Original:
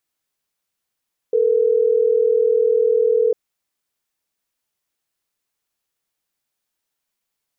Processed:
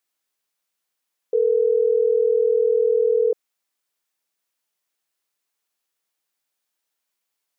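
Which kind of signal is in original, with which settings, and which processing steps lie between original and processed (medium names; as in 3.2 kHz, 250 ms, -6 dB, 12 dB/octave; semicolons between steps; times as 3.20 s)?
call progress tone ringback tone, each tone -16 dBFS
high-pass 360 Hz 6 dB/octave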